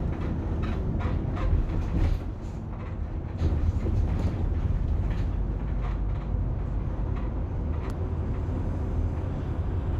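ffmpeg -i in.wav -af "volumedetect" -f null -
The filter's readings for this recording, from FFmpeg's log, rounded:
mean_volume: -27.2 dB
max_volume: -13.1 dB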